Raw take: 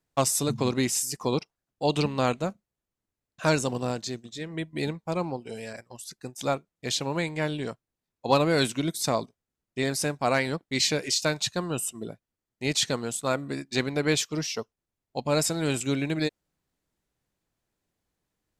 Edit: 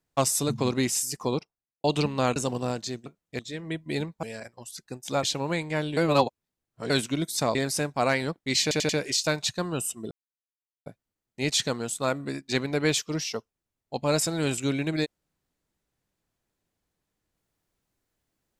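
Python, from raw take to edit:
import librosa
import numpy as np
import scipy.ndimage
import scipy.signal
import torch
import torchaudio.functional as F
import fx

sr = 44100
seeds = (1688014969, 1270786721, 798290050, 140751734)

y = fx.studio_fade_out(x, sr, start_s=1.18, length_s=0.66)
y = fx.edit(y, sr, fx.cut(start_s=2.36, length_s=1.2),
    fx.cut(start_s=5.1, length_s=0.46),
    fx.move(start_s=6.56, length_s=0.33, to_s=4.26),
    fx.reverse_span(start_s=7.63, length_s=0.93),
    fx.cut(start_s=9.21, length_s=0.59),
    fx.stutter(start_s=10.87, slice_s=0.09, count=4),
    fx.insert_silence(at_s=12.09, length_s=0.75), tone=tone)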